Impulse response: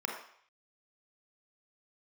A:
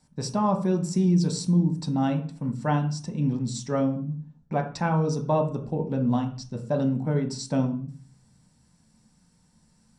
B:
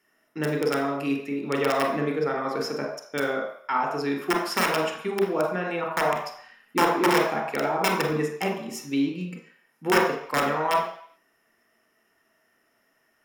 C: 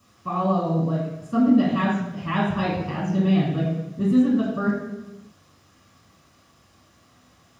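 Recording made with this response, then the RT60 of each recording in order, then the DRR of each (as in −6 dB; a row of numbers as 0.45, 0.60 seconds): B; 0.45, 0.60, 1.0 seconds; 2.0, 0.0, −7.0 decibels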